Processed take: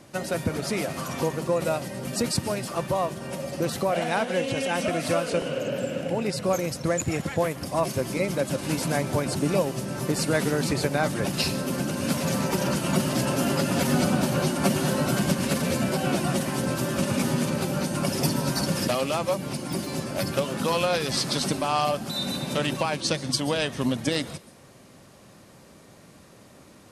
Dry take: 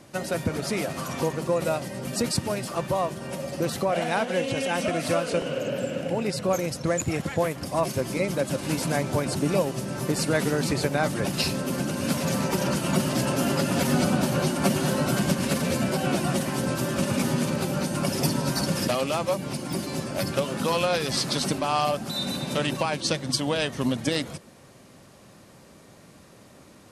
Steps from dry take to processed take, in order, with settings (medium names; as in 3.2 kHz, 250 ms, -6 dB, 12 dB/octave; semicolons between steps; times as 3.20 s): on a send: differentiator + reverberation RT60 0.45 s, pre-delay 119 ms, DRR 23 dB